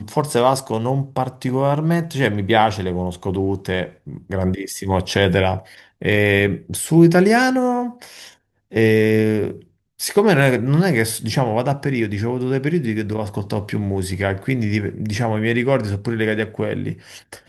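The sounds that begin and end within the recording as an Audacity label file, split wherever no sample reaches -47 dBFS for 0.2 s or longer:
8.710000	9.670000	sound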